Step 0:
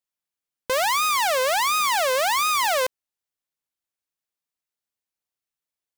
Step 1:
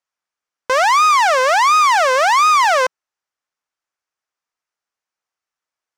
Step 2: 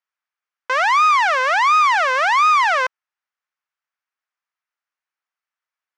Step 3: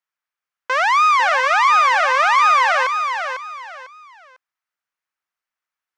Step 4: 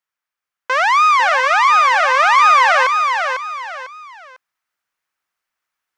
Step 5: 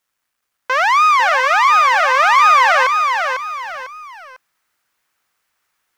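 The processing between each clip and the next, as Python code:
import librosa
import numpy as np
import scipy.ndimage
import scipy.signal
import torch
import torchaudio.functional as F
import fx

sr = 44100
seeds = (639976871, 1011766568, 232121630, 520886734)

y1 = fx.curve_eq(x, sr, hz=(170.0, 1300.0, 3900.0, 5700.0, 16000.0), db=(0, 14, 3, 8, -13))
y1 = y1 * librosa.db_to_amplitude(-2.0)
y2 = fx.bandpass_q(y1, sr, hz=1800.0, q=0.83)
y3 = fx.echo_feedback(y2, sr, ms=499, feedback_pct=28, wet_db=-7)
y4 = fx.rider(y3, sr, range_db=4, speed_s=2.0)
y4 = y4 * librosa.db_to_amplitude(3.0)
y5 = fx.law_mismatch(y4, sr, coded='mu')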